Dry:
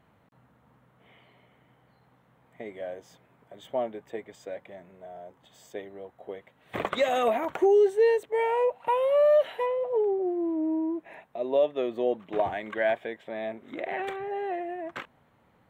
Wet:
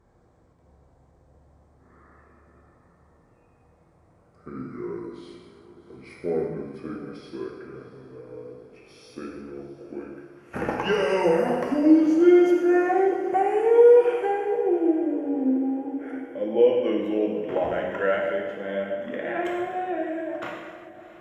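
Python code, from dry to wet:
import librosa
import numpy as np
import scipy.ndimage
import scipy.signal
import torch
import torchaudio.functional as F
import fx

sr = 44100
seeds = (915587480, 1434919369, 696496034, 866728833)

y = fx.speed_glide(x, sr, from_pct=54, to_pct=94)
y = fx.echo_diffused(y, sr, ms=678, feedback_pct=47, wet_db=-15.5)
y = fx.rev_gated(y, sr, seeds[0], gate_ms=440, shape='falling', drr_db=-1.5)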